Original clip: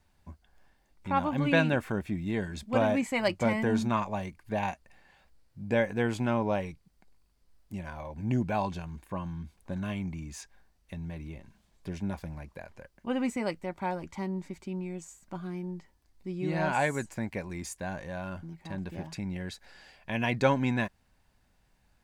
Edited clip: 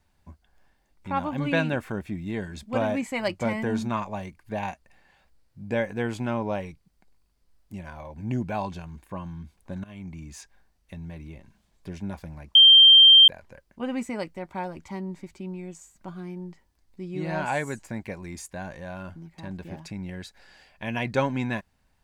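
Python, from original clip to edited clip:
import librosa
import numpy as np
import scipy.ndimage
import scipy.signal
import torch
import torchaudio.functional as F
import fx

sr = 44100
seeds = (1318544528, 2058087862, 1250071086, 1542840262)

y = fx.edit(x, sr, fx.fade_in_from(start_s=9.84, length_s=0.5, curve='qsin', floor_db=-19.5),
    fx.insert_tone(at_s=12.55, length_s=0.73, hz=3160.0, db=-9.0), tone=tone)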